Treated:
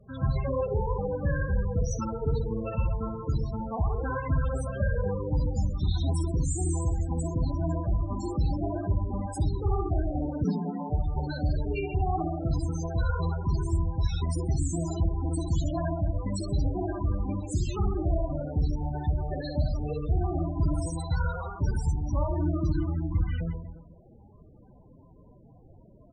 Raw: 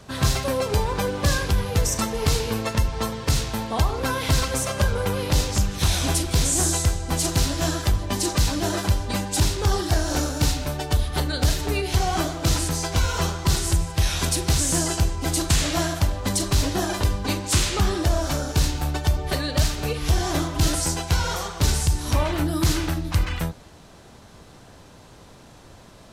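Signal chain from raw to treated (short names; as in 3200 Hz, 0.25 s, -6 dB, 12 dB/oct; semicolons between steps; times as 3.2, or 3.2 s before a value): reverse bouncing-ball echo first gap 60 ms, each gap 1.25×, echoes 5; 10.44–10.9 frequency shift +130 Hz; loudest bins only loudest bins 16; gain -6.5 dB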